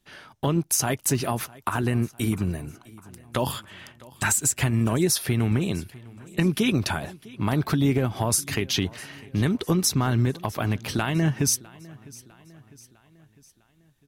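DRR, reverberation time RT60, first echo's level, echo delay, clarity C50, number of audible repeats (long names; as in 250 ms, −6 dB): no reverb audible, no reverb audible, −22.0 dB, 653 ms, no reverb audible, 3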